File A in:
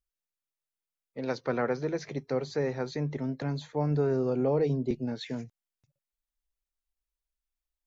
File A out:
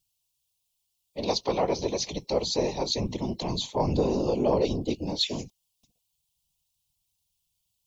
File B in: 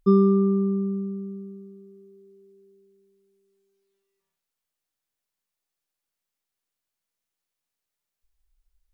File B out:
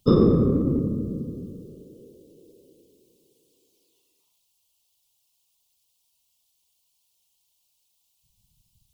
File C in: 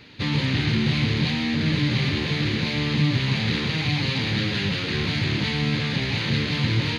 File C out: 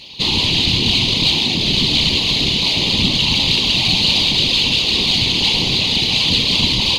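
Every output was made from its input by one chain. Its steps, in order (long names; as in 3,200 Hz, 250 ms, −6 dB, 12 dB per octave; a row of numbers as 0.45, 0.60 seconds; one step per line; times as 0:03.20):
drawn EQ curve 400 Hz 0 dB, 980 Hz +8 dB, 1,500 Hz −19 dB, 2,900 Hz +15 dB
random phases in short frames
in parallel at −11 dB: asymmetric clip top −20.5 dBFS
on the sum: level −1 dB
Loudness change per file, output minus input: +3.0, 0.0, +9.5 LU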